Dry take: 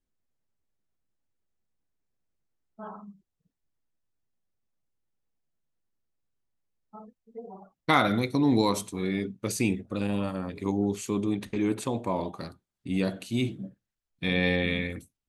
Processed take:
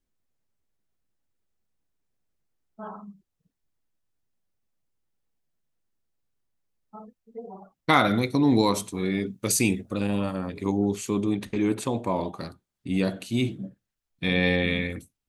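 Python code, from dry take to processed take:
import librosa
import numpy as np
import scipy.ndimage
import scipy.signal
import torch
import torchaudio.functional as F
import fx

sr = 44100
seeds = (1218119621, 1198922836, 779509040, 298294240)

y = fx.high_shelf(x, sr, hz=4100.0, db=9.5, at=(9.26, 9.94))
y = y * 10.0 ** (2.5 / 20.0)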